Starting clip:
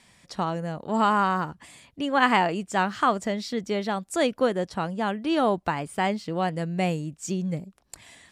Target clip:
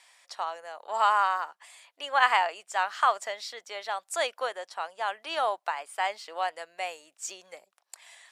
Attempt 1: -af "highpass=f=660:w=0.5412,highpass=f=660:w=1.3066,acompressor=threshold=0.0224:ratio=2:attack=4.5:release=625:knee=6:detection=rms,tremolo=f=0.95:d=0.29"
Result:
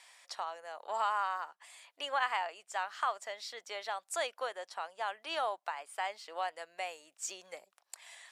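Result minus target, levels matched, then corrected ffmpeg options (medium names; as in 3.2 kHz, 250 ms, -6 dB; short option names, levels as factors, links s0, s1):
compression: peak gain reduction +11.5 dB
-af "highpass=f=660:w=0.5412,highpass=f=660:w=1.3066,tremolo=f=0.95:d=0.29"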